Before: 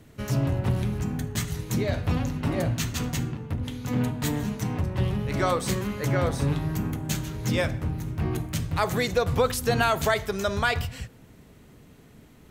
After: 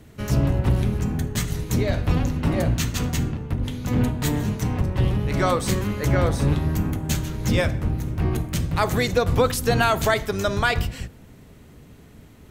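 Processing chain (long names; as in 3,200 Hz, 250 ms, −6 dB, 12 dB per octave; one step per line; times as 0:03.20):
sub-octave generator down 1 octave, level −2 dB
level +3 dB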